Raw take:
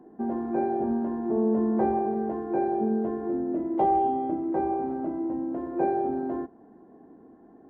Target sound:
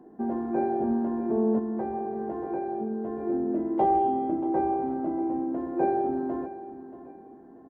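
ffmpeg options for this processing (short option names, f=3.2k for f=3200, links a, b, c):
-filter_complex "[0:a]aecho=1:1:632|1264|1896:0.188|0.0622|0.0205,asplit=3[a][b][c];[a]afade=t=out:st=1.58:d=0.02[d];[b]acompressor=threshold=-28dB:ratio=5,afade=t=in:st=1.58:d=0.02,afade=t=out:st=3.26:d=0.02[e];[c]afade=t=in:st=3.26:d=0.02[f];[d][e][f]amix=inputs=3:normalize=0"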